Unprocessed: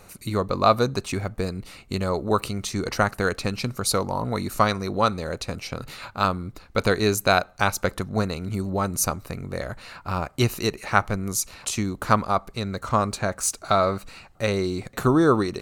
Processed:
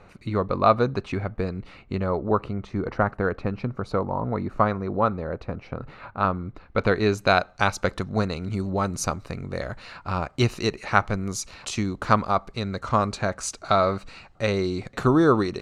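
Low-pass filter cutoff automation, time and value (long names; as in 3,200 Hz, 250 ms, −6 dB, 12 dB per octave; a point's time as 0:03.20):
0:01.78 2,600 Hz
0:02.38 1,400 Hz
0:05.83 1,400 Hz
0:06.98 2,900 Hz
0:07.50 5,600 Hz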